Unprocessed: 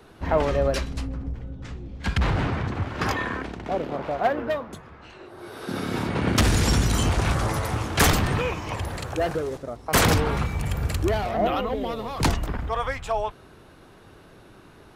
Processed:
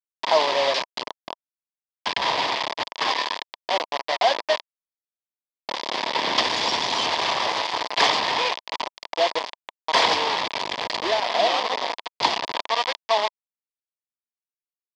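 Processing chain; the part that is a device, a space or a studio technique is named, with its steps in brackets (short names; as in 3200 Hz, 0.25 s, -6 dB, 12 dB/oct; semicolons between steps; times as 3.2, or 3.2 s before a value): hand-held game console (bit-crush 4-bit; speaker cabinet 490–5200 Hz, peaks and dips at 650 Hz +4 dB, 970 Hz +10 dB, 1400 Hz -9 dB, 2000 Hz +3 dB, 3400 Hz +7 dB, 4800 Hz +7 dB)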